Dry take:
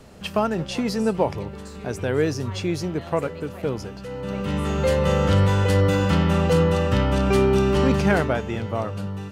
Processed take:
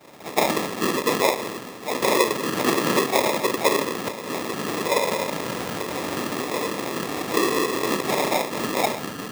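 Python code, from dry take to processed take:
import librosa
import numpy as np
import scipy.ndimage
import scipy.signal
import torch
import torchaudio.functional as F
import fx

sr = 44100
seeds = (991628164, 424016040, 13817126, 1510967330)

y = fx.rider(x, sr, range_db=5, speed_s=0.5)
y = fx.room_shoebox(y, sr, seeds[0], volume_m3=53.0, walls='mixed', distance_m=2.3)
y = fx.whisperise(y, sr, seeds[1])
y = fx.sample_hold(y, sr, seeds[2], rate_hz=1500.0, jitter_pct=0)
y = scipy.signal.sosfilt(scipy.signal.bessel(2, 390.0, 'highpass', norm='mag', fs=sr, output='sos'), y)
y = fx.band_squash(y, sr, depth_pct=100, at=(2.02, 4.09))
y = y * 10.0 ** (-10.5 / 20.0)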